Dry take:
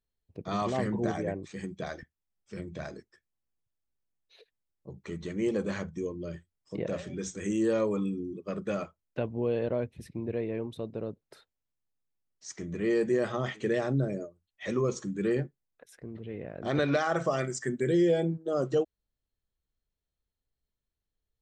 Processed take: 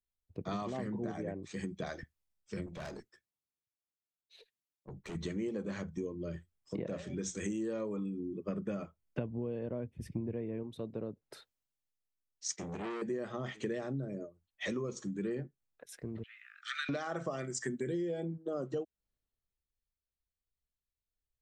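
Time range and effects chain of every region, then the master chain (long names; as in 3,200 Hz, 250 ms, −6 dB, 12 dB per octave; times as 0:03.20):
0:02.66–0:05.15: high-pass filter 92 Hz + tube saturation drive 42 dB, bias 0.45
0:08.37–0:10.63: Butterworth band-reject 4,000 Hz, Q 7.7 + low-shelf EQ 270 Hz +6.5 dB
0:12.48–0:13.02: downward expander −45 dBFS + downward compressor 1.5 to 1, threshold −33 dBFS + saturating transformer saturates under 1,100 Hz
0:16.23–0:16.89: Chebyshev high-pass filter 1,200 Hz, order 10 + dynamic equaliser 5,300 Hz, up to −5 dB, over −55 dBFS, Q 1.5
whole clip: dynamic equaliser 240 Hz, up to +4 dB, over −39 dBFS, Q 1.2; downward compressor 6 to 1, threshold −40 dBFS; multiband upward and downward expander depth 40%; level +4.5 dB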